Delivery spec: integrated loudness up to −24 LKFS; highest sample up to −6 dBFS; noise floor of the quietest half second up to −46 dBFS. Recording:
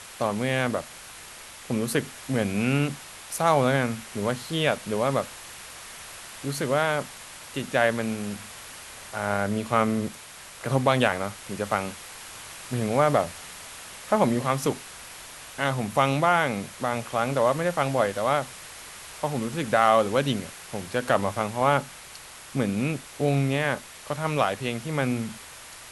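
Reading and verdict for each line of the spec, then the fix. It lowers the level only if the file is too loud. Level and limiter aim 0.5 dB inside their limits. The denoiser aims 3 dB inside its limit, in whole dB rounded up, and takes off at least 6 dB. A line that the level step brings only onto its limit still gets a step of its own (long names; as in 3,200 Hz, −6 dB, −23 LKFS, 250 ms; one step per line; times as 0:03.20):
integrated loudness −26.0 LKFS: in spec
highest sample −6.5 dBFS: in spec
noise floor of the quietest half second −44 dBFS: out of spec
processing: broadband denoise 6 dB, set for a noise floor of −44 dBFS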